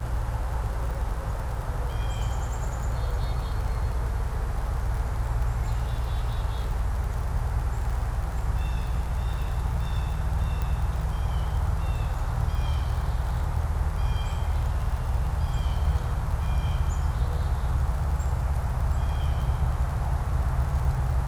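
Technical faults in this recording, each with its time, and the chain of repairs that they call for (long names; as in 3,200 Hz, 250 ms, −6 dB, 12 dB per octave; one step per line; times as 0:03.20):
surface crackle 38 per second −33 dBFS
0:10.62: click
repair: click removal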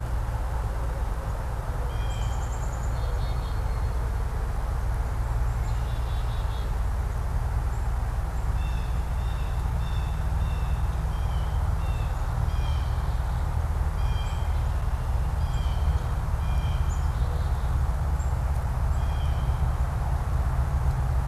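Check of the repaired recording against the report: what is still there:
none of them is left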